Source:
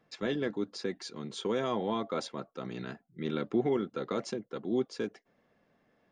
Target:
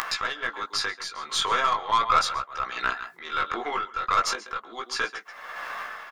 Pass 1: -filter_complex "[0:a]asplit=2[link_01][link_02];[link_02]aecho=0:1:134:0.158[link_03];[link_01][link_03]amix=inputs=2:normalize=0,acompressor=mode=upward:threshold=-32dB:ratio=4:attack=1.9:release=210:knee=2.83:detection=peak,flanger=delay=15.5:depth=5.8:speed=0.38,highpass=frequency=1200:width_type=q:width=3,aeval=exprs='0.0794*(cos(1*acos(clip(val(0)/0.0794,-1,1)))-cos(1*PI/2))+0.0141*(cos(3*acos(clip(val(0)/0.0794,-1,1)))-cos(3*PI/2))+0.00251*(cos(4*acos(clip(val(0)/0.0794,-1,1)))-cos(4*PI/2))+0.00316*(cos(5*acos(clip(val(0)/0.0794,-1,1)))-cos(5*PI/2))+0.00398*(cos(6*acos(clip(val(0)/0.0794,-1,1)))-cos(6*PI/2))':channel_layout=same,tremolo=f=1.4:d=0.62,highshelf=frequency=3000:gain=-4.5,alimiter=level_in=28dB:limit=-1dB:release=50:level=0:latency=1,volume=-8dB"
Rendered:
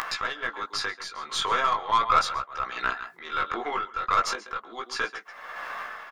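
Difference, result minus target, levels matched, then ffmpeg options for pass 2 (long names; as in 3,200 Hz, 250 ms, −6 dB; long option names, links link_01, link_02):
8,000 Hz band −3.0 dB
-filter_complex "[0:a]asplit=2[link_01][link_02];[link_02]aecho=0:1:134:0.158[link_03];[link_01][link_03]amix=inputs=2:normalize=0,acompressor=mode=upward:threshold=-32dB:ratio=4:attack=1.9:release=210:knee=2.83:detection=peak,flanger=delay=15.5:depth=5.8:speed=0.38,highpass=frequency=1200:width_type=q:width=3,aeval=exprs='0.0794*(cos(1*acos(clip(val(0)/0.0794,-1,1)))-cos(1*PI/2))+0.0141*(cos(3*acos(clip(val(0)/0.0794,-1,1)))-cos(3*PI/2))+0.00251*(cos(4*acos(clip(val(0)/0.0794,-1,1)))-cos(4*PI/2))+0.00316*(cos(5*acos(clip(val(0)/0.0794,-1,1)))-cos(5*PI/2))+0.00398*(cos(6*acos(clip(val(0)/0.0794,-1,1)))-cos(6*PI/2))':channel_layout=same,tremolo=f=1.4:d=0.62,alimiter=level_in=28dB:limit=-1dB:release=50:level=0:latency=1,volume=-8dB"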